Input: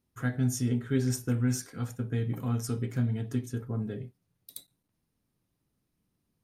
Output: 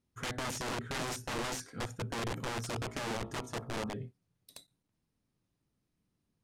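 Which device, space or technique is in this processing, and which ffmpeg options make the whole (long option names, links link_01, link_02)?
overflowing digital effects unit: -filter_complex "[0:a]aeval=exprs='(mod(25.1*val(0)+1,2)-1)/25.1':channel_layout=same,lowpass=8900,asettb=1/sr,asplit=3[link_01][link_02][link_03];[link_01]atrim=end=2.814[link_04];[link_02]atrim=start=2.81:end=3.92,asetpts=PTS-STARTPTS,afade=type=in:duration=0.004:curve=qsin,afade=type=out:start_time=1.106:duration=0.004:curve=qsin,bandreject=frequency=57.33:width_type=h:width=4,bandreject=frequency=114.66:width_type=h:width=4,bandreject=frequency=171.99:width_type=h:width=4,bandreject=frequency=229.32:width_type=h:width=4,bandreject=frequency=286.65:width_type=h:width=4,bandreject=frequency=343.98:width_type=h:width=4,bandreject=frequency=401.31:width_type=h:width=4,bandreject=frequency=458.64:width_type=h:width=4,bandreject=frequency=515.97:width_type=h:width=4,bandreject=frequency=573.3:width_type=h:width=4,bandreject=frequency=630.63:width_type=h:width=4,bandreject=frequency=687.96:width_type=h:width=4,bandreject=frequency=745.29:width_type=h:width=4,bandreject=frequency=802.62:width_type=h:width=4,bandreject=frequency=859.95:width_type=h:width=4,bandreject=frequency=917.28:width_type=h:width=4,bandreject=frequency=974.61:width_type=h:width=4,bandreject=frequency=1031.94:width_type=h:width=4,bandreject=frequency=1089.27:width_type=h:width=4,bandreject=frequency=1146.6:width_type=h:width=4,bandreject=frequency=1203.93:width_type=h:width=4,bandreject=frequency=1261.26:width_type=h:width=4,bandreject=frequency=1318.59:width_type=h:width=4,bandreject=frequency=1375.92:width_type=h:width=4[link_05];[link_03]atrim=start=3.916[link_06];[link_04][link_05]acrossfade=duration=0.004:curve1=hsin:curve2=qsin[link_07];[link_07][link_06]acrossfade=duration=0.004:curve1=qsin:curve2=hsin,volume=-2.5dB"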